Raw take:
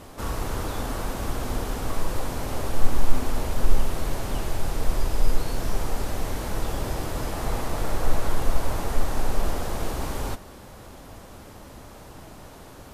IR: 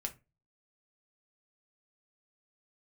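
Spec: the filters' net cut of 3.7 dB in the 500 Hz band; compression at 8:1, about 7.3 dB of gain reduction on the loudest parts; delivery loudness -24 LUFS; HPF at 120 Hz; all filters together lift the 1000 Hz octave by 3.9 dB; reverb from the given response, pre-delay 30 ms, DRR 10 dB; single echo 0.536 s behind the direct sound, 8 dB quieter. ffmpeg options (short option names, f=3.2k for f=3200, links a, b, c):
-filter_complex "[0:a]highpass=120,equalizer=f=500:t=o:g=-7,equalizer=f=1k:t=o:g=7,acompressor=threshold=-35dB:ratio=8,aecho=1:1:536:0.398,asplit=2[a][b];[1:a]atrim=start_sample=2205,adelay=30[c];[b][c]afir=irnorm=-1:irlink=0,volume=-9.5dB[d];[a][d]amix=inputs=2:normalize=0,volume=14dB"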